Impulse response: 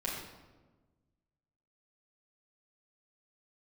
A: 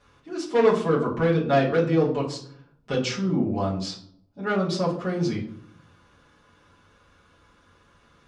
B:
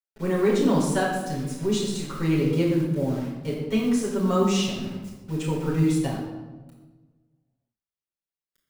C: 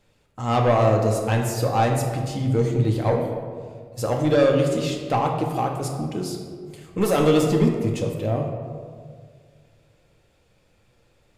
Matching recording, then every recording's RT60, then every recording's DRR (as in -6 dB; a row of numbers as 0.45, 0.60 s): B; 0.60, 1.3, 1.9 s; -6.5, -7.0, 1.0 dB